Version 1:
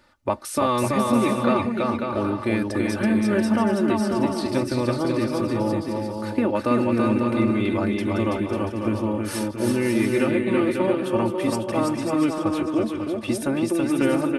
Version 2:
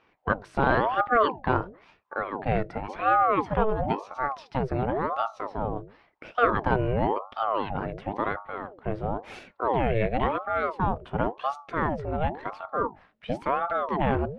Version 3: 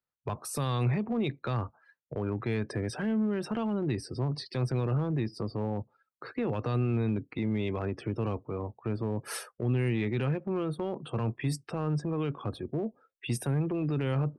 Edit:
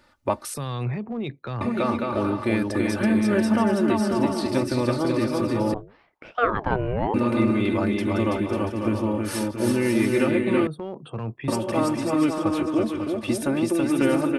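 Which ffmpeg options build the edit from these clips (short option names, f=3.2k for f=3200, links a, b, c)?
-filter_complex "[2:a]asplit=2[a][b];[0:a]asplit=4[c][d][e][f];[c]atrim=end=0.542[g];[a]atrim=start=0.538:end=1.612[h];[d]atrim=start=1.608:end=5.742[i];[1:a]atrim=start=5.738:end=7.142[j];[e]atrim=start=7.138:end=10.672[k];[b]atrim=start=10.668:end=11.482[l];[f]atrim=start=11.478[m];[g][h]acrossfade=d=0.004:c1=hsin:c2=hsin[n];[n][i]acrossfade=d=0.004:c1=hsin:c2=hsin[o];[o][j]acrossfade=d=0.004:c1=hsin:c2=hsin[p];[p][k]acrossfade=d=0.004:c1=hsin:c2=hsin[q];[q][l]acrossfade=d=0.004:c1=hsin:c2=hsin[r];[r][m]acrossfade=d=0.004:c1=hsin:c2=hsin"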